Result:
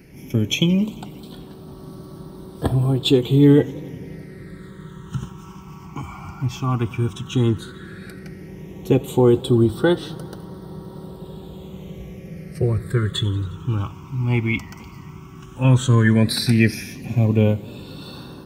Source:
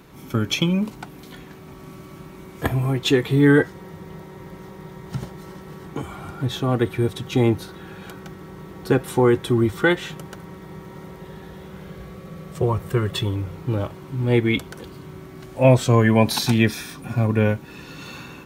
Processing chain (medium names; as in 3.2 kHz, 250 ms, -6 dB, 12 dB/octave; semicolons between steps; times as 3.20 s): phase shifter stages 8, 0.12 Hz, lowest notch 500–2300 Hz; modulated delay 89 ms, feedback 77%, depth 171 cents, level -23 dB; trim +2 dB